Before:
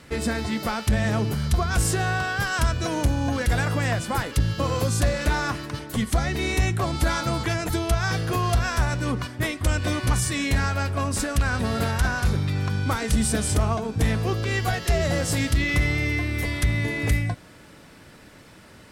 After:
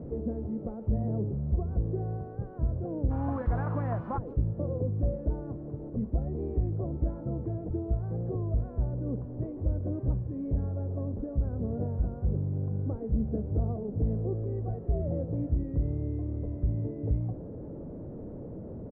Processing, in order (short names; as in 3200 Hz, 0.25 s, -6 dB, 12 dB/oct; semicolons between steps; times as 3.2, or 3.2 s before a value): delta modulation 64 kbps, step -25 dBFS; Chebyshev low-pass 520 Hz, order 3, from 3.1 s 1100 Hz, from 4.17 s 520 Hz; speakerphone echo 0.16 s, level -26 dB; record warp 33 1/3 rpm, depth 100 cents; gain -5.5 dB